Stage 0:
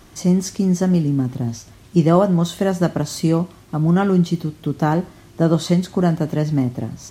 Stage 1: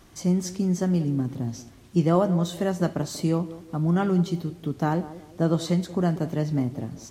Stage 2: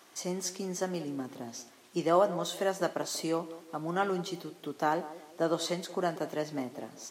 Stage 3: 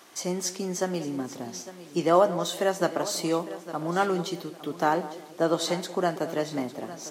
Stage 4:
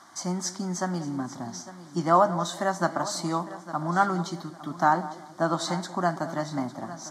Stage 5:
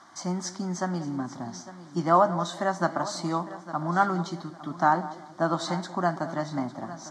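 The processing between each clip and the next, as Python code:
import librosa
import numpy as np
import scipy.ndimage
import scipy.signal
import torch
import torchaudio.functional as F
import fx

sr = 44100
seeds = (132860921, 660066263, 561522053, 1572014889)

y1 = fx.echo_banded(x, sr, ms=186, feedback_pct=40, hz=420.0, wet_db=-13.5)
y1 = F.gain(torch.from_numpy(y1), -6.5).numpy()
y2 = scipy.signal.sosfilt(scipy.signal.butter(2, 470.0, 'highpass', fs=sr, output='sos'), y1)
y3 = fx.echo_feedback(y2, sr, ms=854, feedback_pct=26, wet_db=-15.5)
y3 = F.gain(torch.from_numpy(y3), 5.0).numpy()
y4 = fx.air_absorb(y3, sr, metres=66.0)
y4 = fx.fixed_phaser(y4, sr, hz=1100.0, stages=4)
y4 = F.gain(torch.from_numpy(y4), 5.5).numpy()
y5 = fx.air_absorb(y4, sr, metres=61.0)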